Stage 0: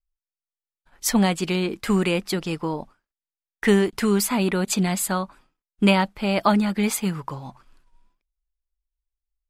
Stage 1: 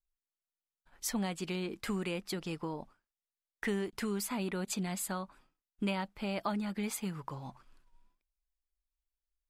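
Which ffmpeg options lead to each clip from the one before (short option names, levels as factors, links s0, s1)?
-af "acompressor=threshold=0.0251:ratio=2,volume=0.473"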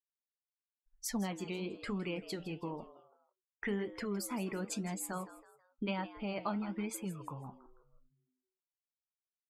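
-filter_complex "[0:a]afftdn=nr=35:nf=-45,flanger=delay=6.5:depth=7.8:regen=-69:speed=1:shape=sinusoidal,asplit=4[s0][s1][s2][s3];[s1]adelay=162,afreqshift=120,volume=0.168[s4];[s2]adelay=324,afreqshift=240,volume=0.0638[s5];[s3]adelay=486,afreqshift=360,volume=0.0243[s6];[s0][s4][s5][s6]amix=inputs=4:normalize=0,volume=1.26"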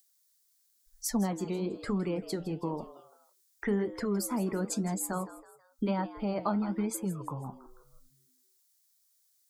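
-filter_complex "[0:a]equalizer=f=2700:t=o:w=0.91:g=-14.5,acrossover=split=230|790|2200[s0][s1][s2][s3];[s3]acompressor=mode=upward:threshold=0.00112:ratio=2.5[s4];[s0][s1][s2][s4]amix=inputs=4:normalize=0,volume=2.24"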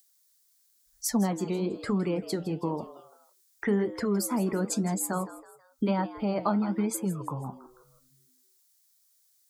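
-af "highpass=56,volume=1.5"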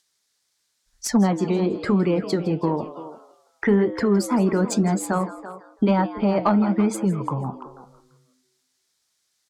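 -filter_complex "[0:a]asplit=2[s0][s1];[s1]adelay=340,highpass=300,lowpass=3400,asoftclip=type=hard:threshold=0.075,volume=0.224[s2];[s0][s2]amix=inputs=2:normalize=0,adynamicsmooth=sensitivity=2:basefreq=5200,asoftclip=type=tanh:threshold=0.188,volume=2.66"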